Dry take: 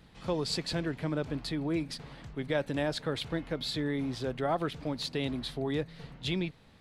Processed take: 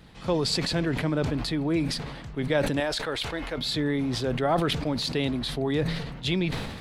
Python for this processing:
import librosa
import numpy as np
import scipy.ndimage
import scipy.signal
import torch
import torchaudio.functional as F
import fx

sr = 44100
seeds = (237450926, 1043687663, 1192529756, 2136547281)

y = fx.peak_eq(x, sr, hz=150.0, db=-14.0, octaves=2.3, at=(2.8, 3.58))
y = fx.sustainer(y, sr, db_per_s=42.0)
y = y * 10.0 ** (5.5 / 20.0)